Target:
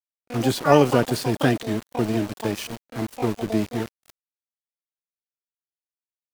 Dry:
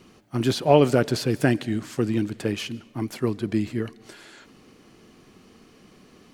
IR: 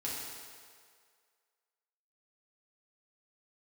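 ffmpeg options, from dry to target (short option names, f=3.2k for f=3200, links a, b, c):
-filter_complex "[0:a]aeval=exprs='val(0)*gte(abs(val(0)),0.0299)':c=same,asplit=2[a][b];[b]asetrate=88200,aresample=44100,atempo=0.5,volume=-7dB[c];[a][c]amix=inputs=2:normalize=0"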